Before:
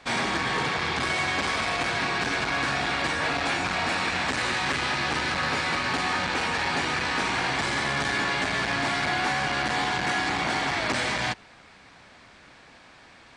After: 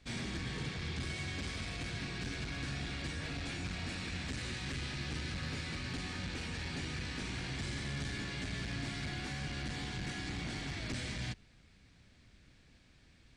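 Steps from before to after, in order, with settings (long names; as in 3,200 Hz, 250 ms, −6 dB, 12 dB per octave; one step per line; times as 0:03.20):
guitar amp tone stack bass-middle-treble 10-0-1
level +9 dB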